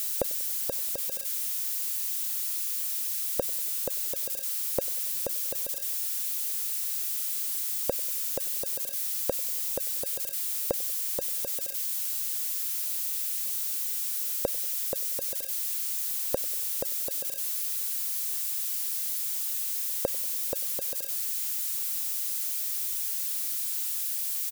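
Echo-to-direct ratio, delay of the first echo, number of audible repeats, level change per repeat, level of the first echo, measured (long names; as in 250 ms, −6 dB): −20.5 dB, 95 ms, 3, −5.0 dB, −22.0 dB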